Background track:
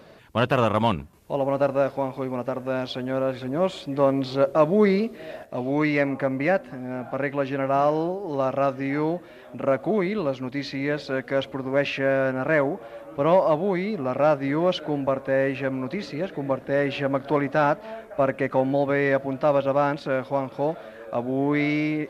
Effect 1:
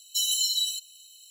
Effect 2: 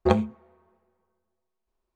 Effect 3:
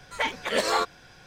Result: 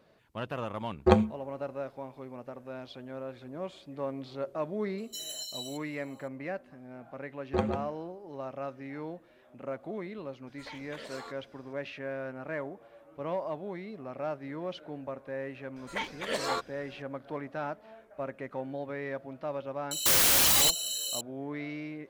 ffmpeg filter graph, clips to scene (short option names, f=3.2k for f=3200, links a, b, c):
-filter_complex "[2:a]asplit=2[a][b];[1:a]asplit=2[c][d];[3:a]asplit=2[e][f];[0:a]volume=-15dB[g];[b]asplit=2[h][i];[i]adelay=145.8,volume=-6dB,highshelf=f=4k:g=-3.28[j];[h][j]amix=inputs=2:normalize=0[k];[e]acompressor=threshold=-26dB:ratio=6:attack=3.2:release=140:knee=1:detection=peak[l];[d]aeval=exprs='0.2*sin(PI/2*8.91*val(0)/0.2)':c=same[m];[a]atrim=end=1.95,asetpts=PTS-STARTPTS,volume=-0.5dB,afade=t=in:d=0.004:c=hsin,afade=t=out:st=1.946:d=0.004:c=hsin,adelay=1010[n];[c]atrim=end=1.3,asetpts=PTS-STARTPTS,volume=-14dB,afade=t=in:d=0.004:c=hsin,afade=t=out:st=1.296:d=0.004:c=hsin,adelay=4980[o];[k]atrim=end=1.95,asetpts=PTS-STARTPTS,volume=-8.5dB,afade=t=in:d=0.004:c=hsin,afade=t=out:st=1.946:d=0.004:c=hsin,adelay=7480[p];[l]atrim=end=1.26,asetpts=PTS-STARTPTS,volume=-14.5dB,afade=t=in:d=0.004:c=hsin,afade=t=out:st=1.256:d=0.004:c=hsin,adelay=10470[q];[f]atrim=end=1.26,asetpts=PTS-STARTPTS,volume=-7.5dB,afade=t=in:d=0.004:c=hsin,afade=t=out:st=1.256:d=0.004:c=hsin,adelay=15760[r];[m]atrim=end=1.3,asetpts=PTS-STARTPTS,volume=-5.5dB,afade=t=in:d=0.004:c=hsin,afade=t=out:st=1.296:d=0.004:c=hsin,adelay=19910[s];[g][n][o][p][q][r][s]amix=inputs=7:normalize=0"